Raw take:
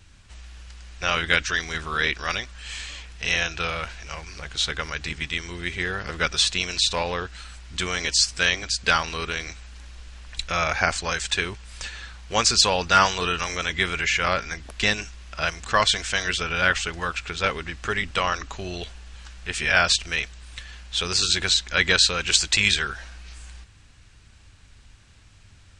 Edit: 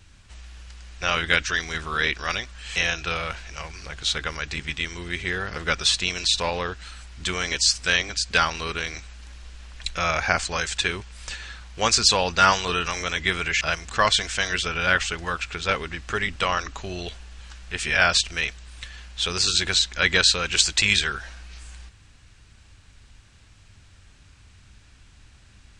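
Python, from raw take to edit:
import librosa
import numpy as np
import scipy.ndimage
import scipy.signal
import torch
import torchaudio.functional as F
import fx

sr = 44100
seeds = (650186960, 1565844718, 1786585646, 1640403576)

y = fx.edit(x, sr, fx.cut(start_s=2.76, length_s=0.53),
    fx.cut(start_s=14.14, length_s=1.22), tone=tone)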